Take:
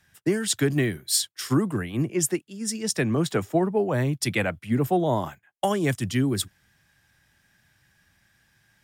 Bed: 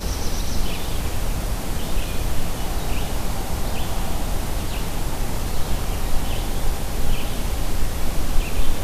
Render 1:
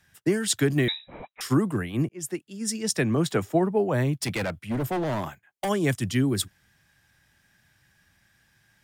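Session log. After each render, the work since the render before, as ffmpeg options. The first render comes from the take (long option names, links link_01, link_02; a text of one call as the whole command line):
ffmpeg -i in.wav -filter_complex "[0:a]asettb=1/sr,asplit=3[link_01][link_02][link_03];[link_01]atrim=end=0.884[link_04];[link_02]atrim=start=0.88:end=1.41,asetpts=PTS-STARTPTS,afade=type=in:duration=0.004:curve=qsin,afade=type=out:start_time=0.526:duration=0.004:curve=qsin,lowpass=frequency=3400:width_type=q:width=0.5098,lowpass=frequency=3400:width_type=q:width=0.6013,lowpass=frequency=3400:width_type=q:width=0.9,lowpass=frequency=3400:width_type=q:width=2.563,afreqshift=-4000[link_05];[link_03]atrim=start=1.406[link_06];[link_04][link_05]acrossfade=duration=0.004:curve1=hsin:curve2=qsin[link_07];[link_07][link_06]acrossfade=duration=0.004:curve1=qsin:curve2=hsin,asplit=3[link_08][link_09][link_10];[link_08]afade=type=out:start_time=4.19:duration=0.02[link_11];[link_09]volume=24.5dB,asoftclip=hard,volume=-24.5dB,afade=type=in:start_time=4.19:duration=0.02,afade=type=out:start_time=5.68:duration=0.02[link_12];[link_10]afade=type=in:start_time=5.68:duration=0.02[link_13];[link_11][link_12][link_13]amix=inputs=3:normalize=0,asplit=2[link_14][link_15];[link_14]atrim=end=2.09,asetpts=PTS-STARTPTS,afade=type=out:start_time=2.086:duration=0.004:curve=hsin[link_16];[link_15]atrim=start=2.09,asetpts=PTS-STARTPTS,afade=type=in:duration=0.46[link_17];[link_16][link_17]concat=n=2:v=0:a=1" out.wav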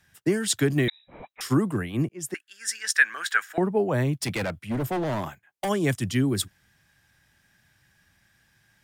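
ffmpeg -i in.wav -filter_complex "[0:a]asettb=1/sr,asplit=3[link_01][link_02][link_03];[link_01]atrim=end=2.344[link_04];[link_02]atrim=start=2.34:end=3.58,asetpts=PTS-STARTPTS,afade=type=in:duration=0.004:curve=qsin,afade=type=out:start_time=1.236:duration=0.004:curve=qsin,highpass=frequency=1600:width_type=q:width=8[link_05];[link_03]atrim=start=3.576[link_06];[link_04][link_05]acrossfade=duration=0.004:curve1=hsin:curve2=qsin[link_07];[link_07][link_06]acrossfade=duration=0.004:curve1=qsin:curve2=hsin,asplit=2[link_08][link_09];[link_08]atrim=end=0.9,asetpts=PTS-STARTPTS,afade=type=out:start_time=0.896:duration=0.004:curve=hsin[link_10];[link_09]atrim=start=0.9,asetpts=PTS-STARTPTS,afade=type=in:duration=0.4[link_11];[link_10][link_11]concat=n=2:v=0:a=1" out.wav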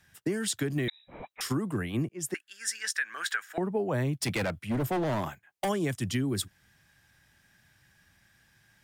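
ffmpeg -i in.wav -af "alimiter=limit=-17dB:level=0:latency=1:release=281,acompressor=threshold=-28dB:ratio=2" out.wav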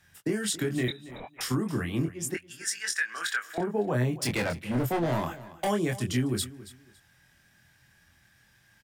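ffmpeg -i in.wav -filter_complex "[0:a]asplit=2[link_01][link_02];[link_02]adelay=24,volume=-4dB[link_03];[link_01][link_03]amix=inputs=2:normalize=0,aecho=1:1:278|556:0.141|0.0311" out.wav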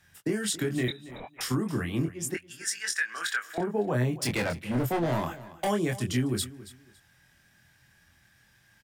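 ffmpeg -i in.wav -af anull out.wav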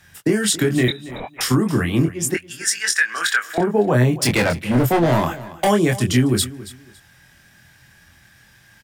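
ffmpeg -i in.wav -af "volume=11dB" out.wav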